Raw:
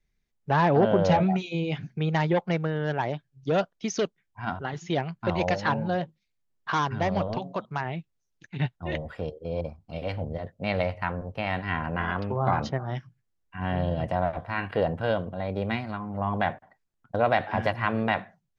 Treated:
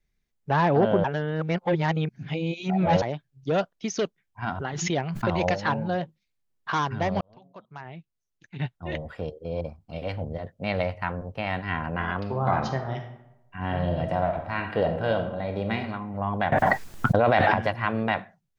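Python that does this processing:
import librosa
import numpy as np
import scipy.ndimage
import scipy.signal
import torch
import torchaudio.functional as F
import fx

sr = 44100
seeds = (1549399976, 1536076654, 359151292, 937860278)

y = fx.pre_swell(x, sr, db_per_s=41.0, at=(4.42, 5.56))
y = fx.reverb_throw(y, sr, start_s=12.19, length_s=3.61, rt60_s=0.87, drr_db=5.5)
y = fx.env_flatten(y, sr, amount_pct=100, at=(16.52, 17.54))
y = fx.edit(y, sr, fx.reverse_span(start_s=1.04, length_s=1.98),
    fx.fade_in_span(start_s=7.21, length_s=1.92), tone=tone)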